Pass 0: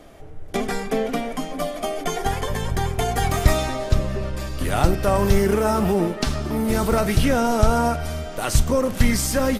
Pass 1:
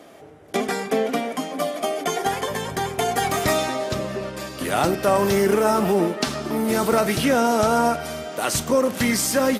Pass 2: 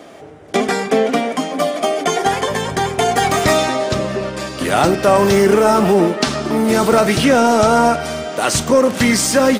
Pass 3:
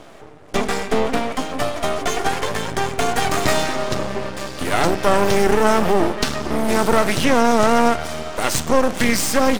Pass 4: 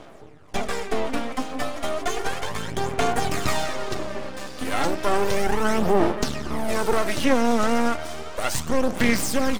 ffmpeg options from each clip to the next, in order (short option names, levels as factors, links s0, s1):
-af "highpass=210,volume=1.26"
-af "equalizer=f=12000:w=3.1:g=-15,acontrast=48,volume=1.19"
-af "aeval=exprs='max(val(0),0)':c=same"
-af "aphaser=in_gain=1:out_gain=1:delay=4:decay=0.45:speed=0.33:type=sinusoidal,volume=0.447"